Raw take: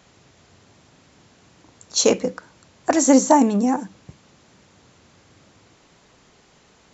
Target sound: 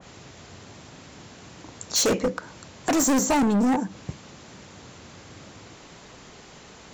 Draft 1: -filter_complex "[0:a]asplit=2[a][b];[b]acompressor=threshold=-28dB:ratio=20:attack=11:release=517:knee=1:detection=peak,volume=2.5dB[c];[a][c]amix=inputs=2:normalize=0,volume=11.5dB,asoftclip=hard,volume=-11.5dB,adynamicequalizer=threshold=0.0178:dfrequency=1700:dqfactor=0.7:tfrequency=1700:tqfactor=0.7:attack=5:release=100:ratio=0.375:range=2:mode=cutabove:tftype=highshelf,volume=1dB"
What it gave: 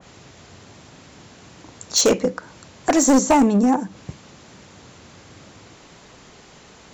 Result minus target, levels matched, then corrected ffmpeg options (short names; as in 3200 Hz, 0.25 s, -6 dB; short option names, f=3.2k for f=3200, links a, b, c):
overloaded stage: distortion -6 dB
-filter_complex "[0:a]asplit=2[a][b];[b]acompressor=threshold=-28dB:ratio=20:attack=11:release=517:knee=1:detection=peak,volume=2.5dB[c];[a][c]amix=inputs=2:normalize=0,volume=19.5dB,asoftclip=hard,volume=-19.5dB,adynamicequalizer=threshold=0.0178:dfrequency=1700:dqfactor=0.7:tfrequency=1700:tqfactor=0.7:attack=5:release=100:ratio=0.375:range=2:mode=cutabove:tftype=highshelf,volume=1dB"